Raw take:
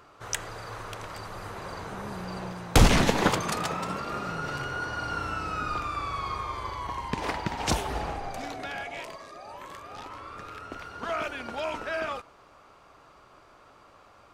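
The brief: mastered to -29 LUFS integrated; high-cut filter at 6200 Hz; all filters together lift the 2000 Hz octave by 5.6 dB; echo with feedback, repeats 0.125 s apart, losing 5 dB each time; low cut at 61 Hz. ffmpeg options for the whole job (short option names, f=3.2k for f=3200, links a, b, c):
-af "highpass=61,lowpass=6.2k,equalizer=f=2k:t=o:g=7.5,aecho=1:1:125|250|375|500|625|750|875:0.562|0.315|0.176|0.0988|0.0553|0.031|0.0173,volume=-2dB"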